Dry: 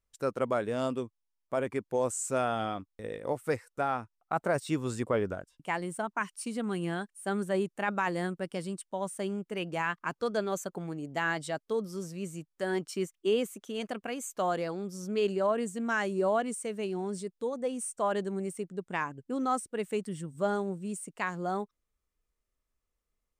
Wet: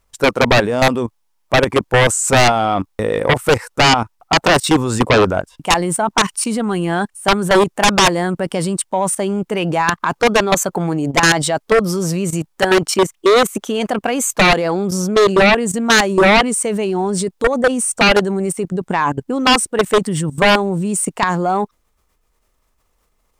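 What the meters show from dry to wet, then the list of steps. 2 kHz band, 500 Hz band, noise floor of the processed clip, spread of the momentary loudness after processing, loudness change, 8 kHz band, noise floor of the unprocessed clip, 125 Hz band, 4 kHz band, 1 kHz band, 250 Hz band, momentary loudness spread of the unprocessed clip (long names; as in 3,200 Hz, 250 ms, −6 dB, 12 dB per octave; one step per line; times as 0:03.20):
+19.5 dB, +15.5 dB, −64 dBFS, 8 LU, +17.5 dB, +21.0 dB, −83 dBFS, +18.5 dB, +26.0 dB, +17.5 dB, +16.5 dB, 7 LU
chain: output level in coarse steps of 15 dB
parametric band 880 Hz +6.5 dB 0.82 octaves
sine wavefolder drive 14 dB, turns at −15.5 dBFS
level +8.5 dB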